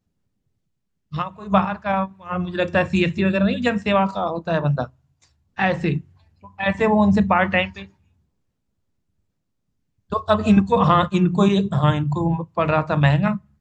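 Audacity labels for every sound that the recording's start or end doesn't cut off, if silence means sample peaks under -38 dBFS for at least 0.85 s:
1.120000	7.860000	sound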